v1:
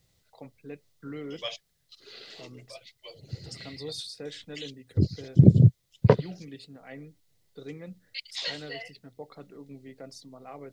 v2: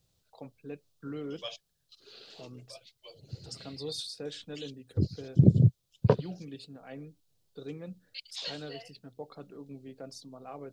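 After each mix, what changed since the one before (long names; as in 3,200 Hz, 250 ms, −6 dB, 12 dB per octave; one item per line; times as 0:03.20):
second voice −4.5 dB
master: add parametric band 2,000 Hz −13 dB 0.24 octaves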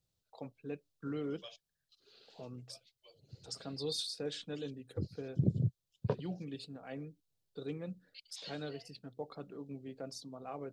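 second voice −11.0 dB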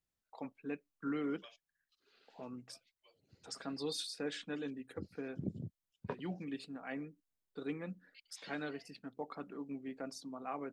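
second voice −6.5 dB
master: add octave-band graphic EQ 125/250/500/1,000/2,000/4,000 Hz −10/+6/−4/+5/+9/−6 dB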